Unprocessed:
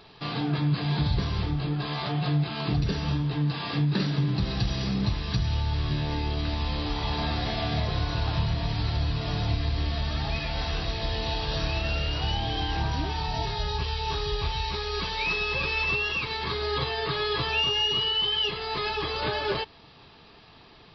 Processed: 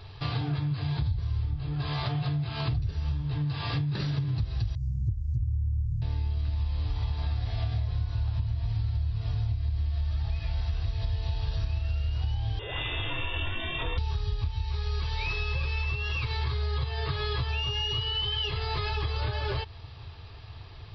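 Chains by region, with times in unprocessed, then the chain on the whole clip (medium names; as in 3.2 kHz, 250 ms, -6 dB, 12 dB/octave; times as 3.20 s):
4.75–6.02 s: CVSD coder 32 kbps + inverse Chebyshev band-stop 630–2700 Hz, stop band 70 dB
12.59–13.98 s: tilt EQ +3.5 dB/octave + frequency inversion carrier 3.6 kHz
whole clip: resonant low shelf 140 Hz +12.5 dB, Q 3; compression 10:1, threshold -26 dBFS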